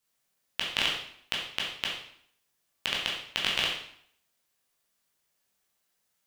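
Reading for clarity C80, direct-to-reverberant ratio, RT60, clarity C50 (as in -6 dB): 6.5 dB, -3.5 dB, 0.60 s, 2.5 dB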